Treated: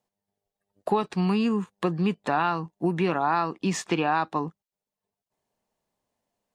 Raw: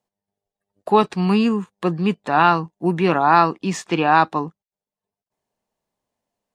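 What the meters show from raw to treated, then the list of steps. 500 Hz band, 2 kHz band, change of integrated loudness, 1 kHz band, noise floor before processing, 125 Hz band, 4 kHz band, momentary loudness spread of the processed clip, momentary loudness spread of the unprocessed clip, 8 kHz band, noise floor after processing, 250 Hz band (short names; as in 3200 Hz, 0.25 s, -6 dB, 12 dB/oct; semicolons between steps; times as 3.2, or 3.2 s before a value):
-7.0 dB, -8.5 dB, -7.5 dB, -9.5 dB, under -85 dBFS, -5.5 dB, -6.5 dB, 5 LU, 9 LU, -1.5 dB, under -85 dBFS, -6.0 dB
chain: compressor 5:1, threshold -21 dBFS, peak gain reduction 11.5 dB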